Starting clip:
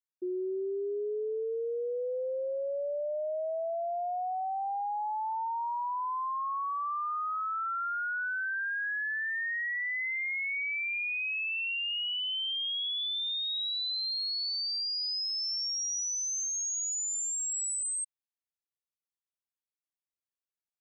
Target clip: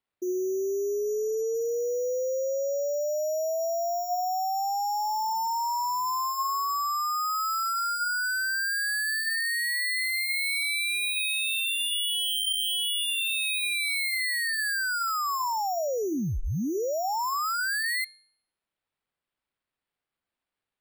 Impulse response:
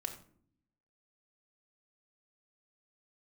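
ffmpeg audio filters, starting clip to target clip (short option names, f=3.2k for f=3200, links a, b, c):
-af "acrusher=samples=7:mix=1:aa=0.000001,bandreject=f=353.3:t=h:w=4,bandreject=f=706.6:t=h:w=4,bandreject=f=1.0599k:t=h:w=4,bandreject=f=1.4132k:t=h:w=4,bandreject=f=1.7665k:t=h:w=4,bandreject=f=2.1198k:t=h:w=4,bandreject=f=2.4731k:t=h:w=4,bandreject=f=2.8264k:t=h:w=4,bandreject=f=3.1797k:t=h:w=4,bandreject=f=3.533k:t=h:w=4,bandreject=f=3.8863k:t=h:w=4,bandreject=f=4.2396k:t=h:w=4,bandreject=f=4.5929k:t=h:w=4,bandreject=f=4.9462k:t=h:w=4,bandreject=f=5.2995k:t=h:w=4,bandreject=f=5.6528k:t=h:w=4,bandreject=f=6.0061k:t=h:w=4,bandreject=f=6.3594k:t=h:w=4,bandreject=f=6.7127k:t=h:w=4,bandreject=f=7.066k:t=h:w=4,bandreject=f=7.4193k:t=h:w=4,bandreject=f=7.7726k:t=h:w=4,bandreject=f=8.1259k:t=h:w=4,bandreject=f=8.4792k:t=h:w=4,bandreject=f=8.8325k:t=h:w=4,bandreject=f=9.1858k:t=h:w=4,bandreject=f=9.5391k:t=h:w=4,bandreject=f=9.8924k:t=h:w=4,bandreject=f=10.2457k:t=h:w=4,bandreject=f=10.599k:t=h:w=4,bandreject=f=10.9523k:t=h:w=4,bandreject=f=11.3056k:t=h:w=4,volume=5dB"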